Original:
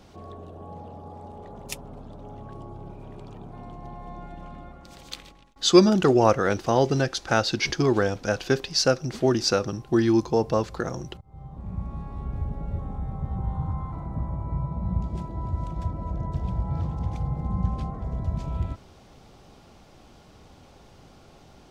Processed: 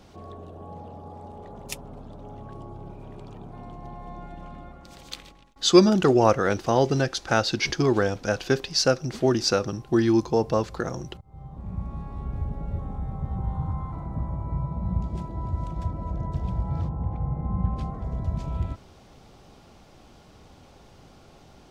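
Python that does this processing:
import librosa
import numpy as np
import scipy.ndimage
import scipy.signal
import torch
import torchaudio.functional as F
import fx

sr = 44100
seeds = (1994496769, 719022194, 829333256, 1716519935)

y = fx.lowpass(x, sr, hz=fx.line((16.88, 1100.0), (17.75, 2400.0)), slope=12, at=(16.88, 17.75), fade=0.02)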